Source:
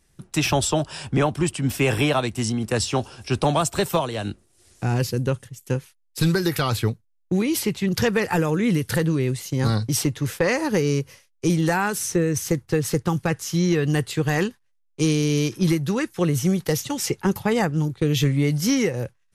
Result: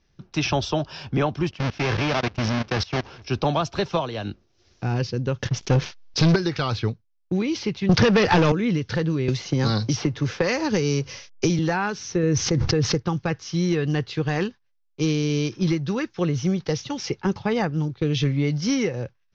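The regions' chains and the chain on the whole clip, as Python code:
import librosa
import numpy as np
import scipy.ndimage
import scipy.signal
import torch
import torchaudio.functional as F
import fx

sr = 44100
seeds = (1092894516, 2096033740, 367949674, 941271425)

y = fx.chain(x, sr, fx.halfwave_hold(),
    fx.level_steps(step_db=21),
    fx.peak_eq(hz=2000.0, db=4.0, octaves=1.3), at=(1.51, 3.22))
y = fx.chain(y, sr, fx.leveller(passes=3),
    fx.env_flatten(amount_pct=50), at=(5.42, 6.36))
y = fx.chain(y, sr, fx.leveller(passes=3),
    fx.band_squash(depth_pct=100), at=(7.89, 8.52))
y = fx.chain(y, sr, fx.law_mismatch(coded='mu'),
    fx.peak_eq(hz=12000.0, db=14.5, octaves=0.79),
    fx.band_squash(depth_pct=100), at=(9.28, 11.59))
y = fx.chain(y, sr, fx.peak_eq(hz=2900.0, db=-3.5, octaves=2.5),
    fx.env_flatten(amount_pct=100), at=(12.23, 12.95))
y = scipy.signal.sosfilt(scipy.signal.butter(12, 6000.0, 'lowpass', fs=sr, output='sos'), y)
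y = fx.notch(y, sr, hz=1900.0, q=20.0)
y = F.gain(torch.from_numpy(y), -2.0).numpy()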